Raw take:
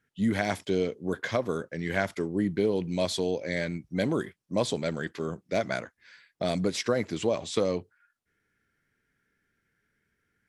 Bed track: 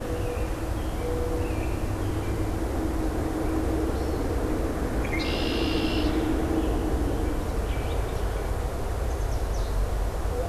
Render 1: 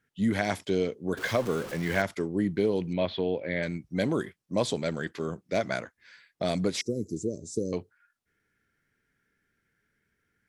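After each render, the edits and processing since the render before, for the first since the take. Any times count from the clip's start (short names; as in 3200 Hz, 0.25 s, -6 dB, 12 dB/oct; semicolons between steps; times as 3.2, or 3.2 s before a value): 1.17–2.02 zero-crossing step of -34.5 dBFS; 2.93–3.63 steep low-pass 3500 Hz; 6.81–7.73 elliptic band-stop 410–6100 Hz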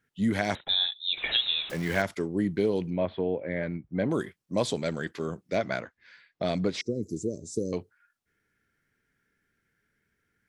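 0.55–1.7 inverted band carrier 3900 Hz; 2.9–4.11 LPF 1800 Hz; 5.55–7.03 LPF 4600 Hz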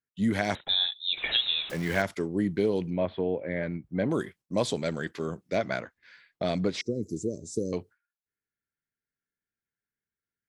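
gate with hold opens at -51 dBFS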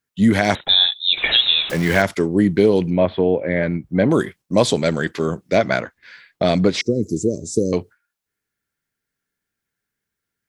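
gain +11.5 dB; limiter -2 dBFS, peak gain reduction 2.5 dB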